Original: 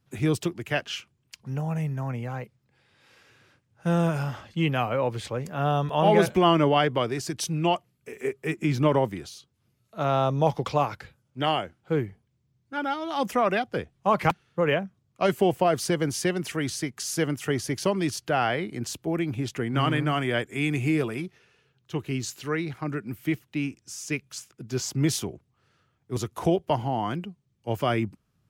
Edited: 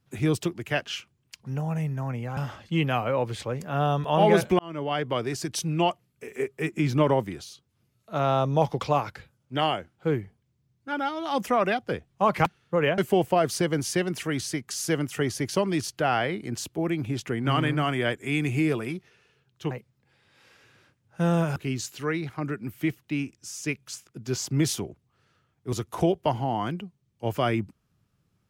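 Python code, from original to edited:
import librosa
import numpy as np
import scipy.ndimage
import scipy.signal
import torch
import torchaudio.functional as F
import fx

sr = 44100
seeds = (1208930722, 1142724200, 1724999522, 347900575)

y = fx.edit(x, sr, fx.move(start_s=2.37, length_s=1.85, to_s=22.0),
    fx.fade_in_span(start_s=6.44, length_s=0.72),
    fx.cut(start_s=14.83, length_s=0.44), tone=tone)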